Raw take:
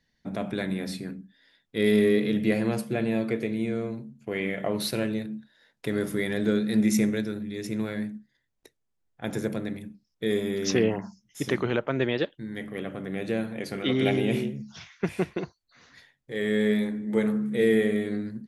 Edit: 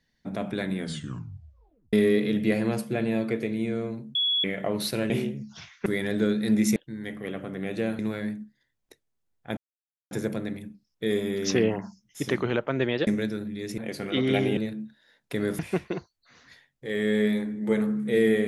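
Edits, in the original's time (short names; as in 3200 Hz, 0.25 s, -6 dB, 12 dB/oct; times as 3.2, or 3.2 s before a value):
0.76 tape stop 1.17 s
4.15–4.44 bleep 3370 Hz -21.5 dBFS
5.1–6.12 swap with 14.29–15.05
7.02–7.73 swap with 12.27–13.5
9.31 insert silence 0.54 s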